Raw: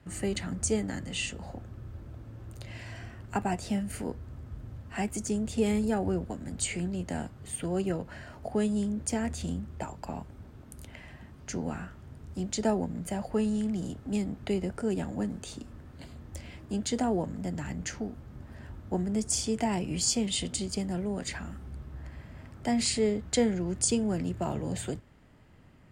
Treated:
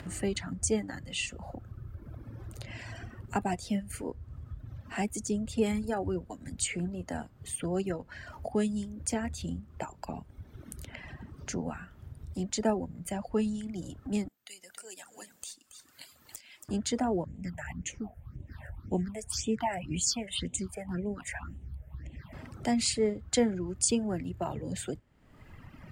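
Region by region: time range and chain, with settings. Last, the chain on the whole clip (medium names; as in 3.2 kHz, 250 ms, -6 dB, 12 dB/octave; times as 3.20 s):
14.28–16.69 s: differentiator + valve stage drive 31 dB, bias 0.35 + delay 277 ms -11 dB
17.24–22.33 s: dynamic bell 1.1 kHz, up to +5 dB, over -48 dBFS, Q 0.75 + phase shifter stages 6, 1.9 Hz, lowest notch 280–1400 Hz
whole clip: reverb removal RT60 1.7 s; upward compressor, threshold -36 dBFS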